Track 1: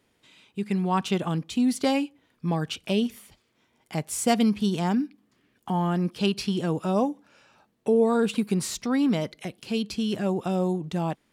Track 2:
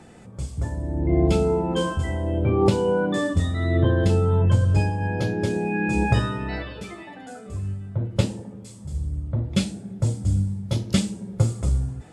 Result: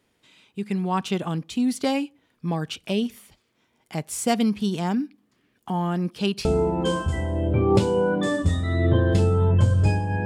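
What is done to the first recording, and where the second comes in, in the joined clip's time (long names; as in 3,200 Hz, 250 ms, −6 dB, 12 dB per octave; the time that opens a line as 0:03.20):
track 1
0:06.45: continue with track 2 from 0:01.36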